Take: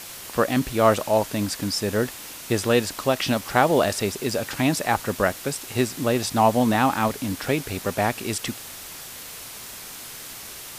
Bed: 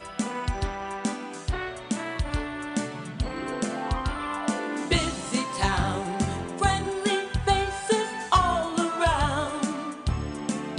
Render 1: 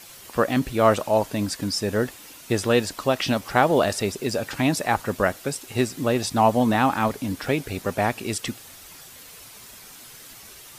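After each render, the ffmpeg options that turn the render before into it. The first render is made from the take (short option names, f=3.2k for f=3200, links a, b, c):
-af "afftdn=nr=8:nf=-39"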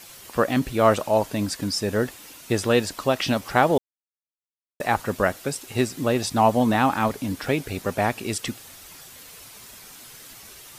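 -filter_complex "[0:a]asplit=3[a][b][c];[a]atrim=end=3.78,asetpts=PTS-STARTPTS,afade=t=out:st=3.776:d=0.004:c=hsin[d];[b]atrim=start=3.78:end=4.8,asetpts=PTS-STARTPTS,volume=0[e];[c]atrim=start=4.8,asetpts=PTS-STARTPTS,afade=t=in:d=0.004:c=hsin[f];[d][e][f]concat=n=3:v=0:a=1"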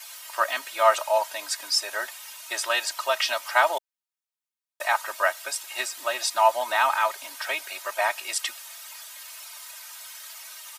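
-af "highpass=f=750:w=0.5412,highpass=f=750:w=1.3066,aecho=1:1:3.2:0.91"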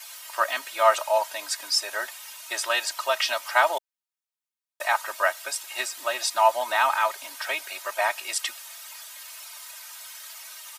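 -af anull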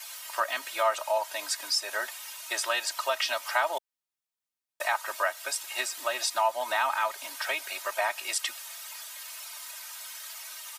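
-filter_complex "[0:a]acrossover=split=190[a][b];[b]acompressor=threshold=-27dB:ratio=2[c];[a][c]amix=inputs=2:normalize=0"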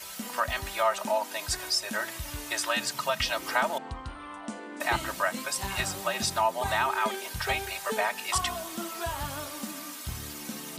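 -filter_complex "[1:a]volume=-11dB[a];[0:a][a]amix=inputs=2:normalize=0"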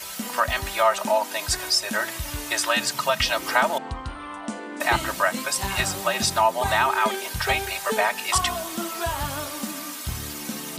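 -af "volume=6dB"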